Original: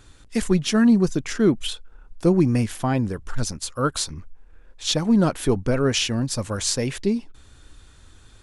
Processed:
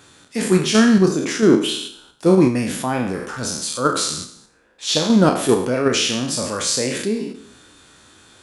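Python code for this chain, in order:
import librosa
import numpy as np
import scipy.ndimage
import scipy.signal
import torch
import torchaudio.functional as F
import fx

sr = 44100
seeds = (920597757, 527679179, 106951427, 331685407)

p1 = fx.spec_trails(x, sr, decay_s=0.66)
p2 = scipy.signal.sosfilt(scipy.signal.butter(2, 190.0, 'highpass', fs=sr, output='sos'), p1)
p3 = fx.transient(p2, sr, attack_db=-2, sustain_db=2)
p4 = fx.level_steps(p3, sr, step_db=19)
p5 = p3 + (p4 * librosa.db_to_amplitude(0.0))
y = fx.doubler(p5, sr, ms=32.0, db=-10.5)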